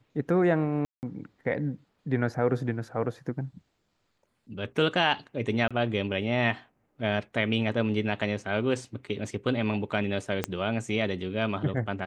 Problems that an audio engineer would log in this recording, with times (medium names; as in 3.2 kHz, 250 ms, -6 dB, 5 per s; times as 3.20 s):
0.85–1.03 s: dropout 179 ms
5.68–5.71 s: dropout 26 ms
10.44 s: pop -12 dBFS